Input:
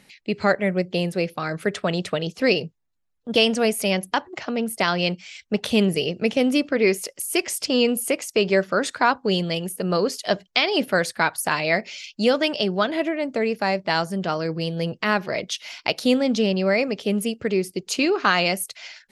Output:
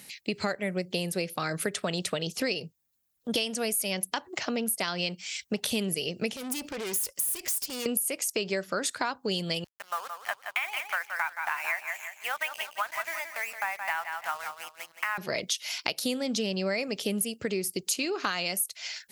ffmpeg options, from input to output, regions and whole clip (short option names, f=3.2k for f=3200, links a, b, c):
-filter_complex "[0:a]asettb=1/sr,asplit=3[a][b][c];[a]atrim=end=6.364[d];[b]atrim=start=6.36:end=7.86,asetpts=PTS-STARTPTS,afade=t=in:d=0.004:c=qsin,afade=t=out:st=1.496:d=0.004:c=qsin,highshelf=f=8.6k:g=6.5,acompressor=threshold=-22dB:ratio=10:attack=3.2:release=140:knee=1:detection=peak,aeval=exprs='(tanh(39.8*val(0)+0.55)-tanh(0.55))/39.8':c=same[e];[c]atrim=start=7.856[f];[d][e]acrossfade=d=0.004:c1=hsin:c2=qsin[g];[g][f]acrossfade=d=0.004:c1=qsin:c2=hsin,asettb=1/sr,asplit=3[h][i][j];[h]atrim=end=9.644[k];[i]atrim=start=9.64:end=15.18,asetpts=PTS-STARTPTS,afade=t=in:d=0.004:c=qsin,afade=t=out:st=5.536:d=0.004:c=qsin,asuperpass=centerf=1400:order=8:qfactor=0.84,aeval=exprs='sgn(val(0))*max(abs(val(0))-0.00501,0)':c=same,aecho=1:1:172|344|516|688:0.335|0.117|0.041|0.0144,atrim=end_sample=244314[l];[j]atrim=start=15.176[m];[k][l]acrossfade=d=0.004:c1=hsin:c2=qsin[n];[n][m]acrossfade=d=0.004:c1=qsin:c2=hsin,aemphasis=mode=production:type=75fm,acompressor=threshold=-27dB:ratio=6,highpass=46"